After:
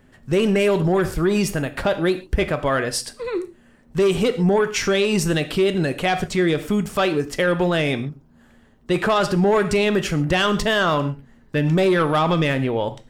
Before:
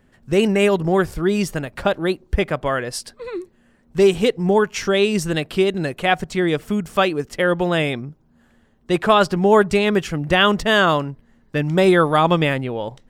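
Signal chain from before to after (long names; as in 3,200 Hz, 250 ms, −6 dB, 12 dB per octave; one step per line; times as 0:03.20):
soft clipping −10 dBFS, distortion −16 dB
reverb whose tail is shaped and stops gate 160 ms falling, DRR 10 dB
brickwall limiter −15 dBFS, peak gain reduction 7.5 dB
level +3.5 dB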